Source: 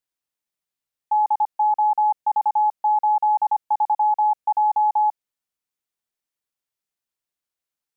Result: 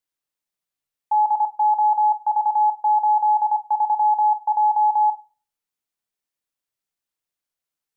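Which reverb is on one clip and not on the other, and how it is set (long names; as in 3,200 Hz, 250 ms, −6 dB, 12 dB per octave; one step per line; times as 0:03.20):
rectangular room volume 320 cubic metres, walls furnished, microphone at 0.4 metres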